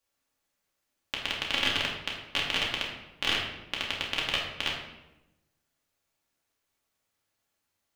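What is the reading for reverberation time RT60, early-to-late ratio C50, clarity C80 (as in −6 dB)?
1.0 s, 3.5 dB, 6.0 dB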